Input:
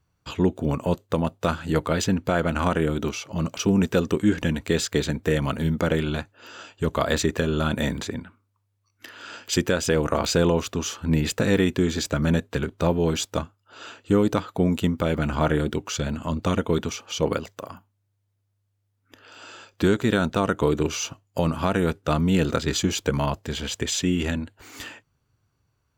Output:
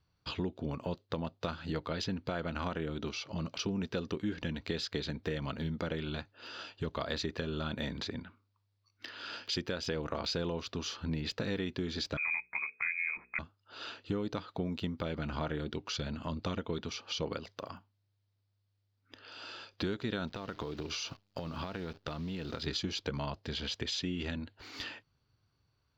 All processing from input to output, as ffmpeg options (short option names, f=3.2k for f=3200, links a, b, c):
-filter_complex "[0:a]asettb=1/sr,asplit=3[a][b][c];[a]atrim=end=12.174[d];[b]atrim=start=12.17:end=13.39,asetpts=PTS-STARTPTS,afade=t=in:d=0.004:c=qsin,afade=t=out:st=1.216:d=0.004:c=qsin,lowpass=f=2.2k:t=q:w=0.5098,lowpass=f=2.2k:t=q:w=0.6013,lowpass=f=2.2k:t=q:w=0.9,lowpass=f=2.2k:t=q:w=2.563,afreqshift=-2600,bandreject=f=60:t=h:w=6,bandreject=f=120:t=h:w=6,bandreject=f=180:t=h:w=6,bandreject=f=240:t=h:w=6,bandreject=f=300:t=h:w=6,bandreject=f=360:t=h:w=6,bandreject=f=420:t=h:w=6,bandreject=f=480:t=h:w=6[e];[c]atrim=start=13.386[f];[d][e]acrossfade=d=0.004:c1=hsin:c2=qsin[g];[g][f]acrossfade=d=0.004:c1=qsin:c2=hsin,asettb=1/sr,asplit=3[h][i][j];[h]atrim=end=20.274[k];[i]atrim=start=20.27:end=22.67,asetpts=PTS-STARTPTS,afade=t=in:d=0.004:c=qsin,afade=t=out:st=2.396:d=0.004:c=qsin,acompressor=threshold=-27dB:ratio=6:attack=3.2:release=140:knee=1:detection=peak,acrusher=bits=9:dc=4:mix=0:aa=0.000001[l];[j]atrim=start=22.666[m];[k][l]acrossfade=d=0.004:c1=hsin:c2=qsin[n];[n][m]acrossfade=d=0.004:c1=qsin:c2=hsin,highshelf=f=6.4k:t=q:w=3:g=-12.5,acompressor=threshold=-31dB:ratio=2.5,volume=-5dB"